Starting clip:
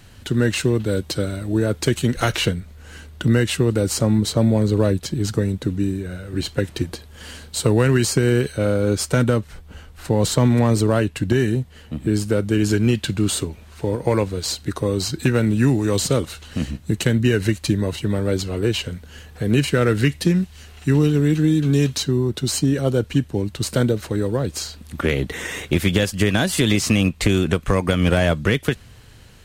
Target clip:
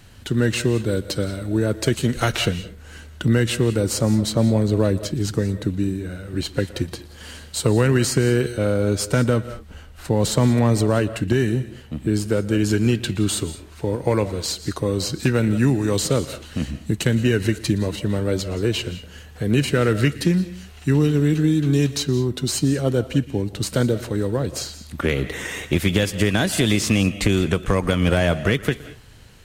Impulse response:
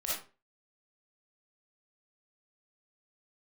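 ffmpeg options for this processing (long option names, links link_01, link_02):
-filter_complex "[0:a]asplit=2[link_01][link_02];[1:a]atrim=start_sample=2205,afade=type=out:start_time=0.19:duration=0.01,atrim=end_sample=8820,adelay=118[link_03];[link_02][link_03]afir=irnorm=-1:irlink=0,volume=-17.5dB[link_04];[link_01][link_04]amix=inputs=2:normalize=0,volume=-1dB"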